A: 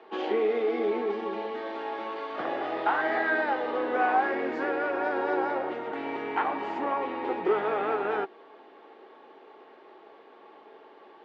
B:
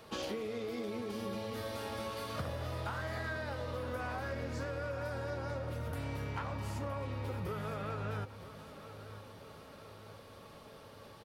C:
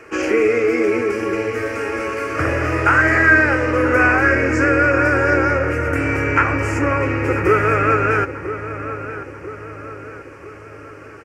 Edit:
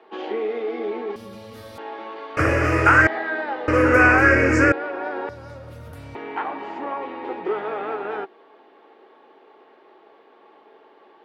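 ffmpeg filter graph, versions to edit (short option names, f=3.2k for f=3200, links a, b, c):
-filter_complex "[1:a]asplit=2[a][b];[2:a]asplit=2[c][d];[0:a]asplit=5[e][f][g][h][i];[e]atrim=end=1.162[j];[a]atrim=start=1.158:end=1.782[k];[f]atrim=start=1.778:end=2.372[l];[c]atrim=start=2.368:end=3.072[m];[g]atrim=start=3.068:end=3.682[n];[d]atrim=start=3.678:end=4.722[o];[h]atrim=start=4.718:end=5.292[p];[b]atrim=start=5.288:end=6.152[q];[i]atrim=start=6.148[r];[j][k]acrossfade=d=0.004:c1=hsin:c2=hsin[s];[s][l]acrossfade=d=0.004:c1=hsin:c2=hsin[t];[t][m]acrossfade=d=0.004:c1=hsin:c2=hsin[u];[u][n]acrossfade=d=0.004:c1=hsin:c2=hsin[v];[v][o]acrossfade=d=0.004:c1=hsin:c2=hsin[w];[w][p]acrossfade=d=0.004:c1=hsin:c2=hsin[x];[x][q]acrossfade=d=0.004:c1=hsin:c2=hsin[y];[y][r]acrossfade=d=0.004:c1=hsin:c2=hsin"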